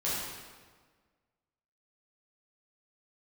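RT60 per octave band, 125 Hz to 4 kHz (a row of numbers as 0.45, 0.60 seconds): 1.6, 1.7, 1.6, 1.5, 1.3, 1.1 seconds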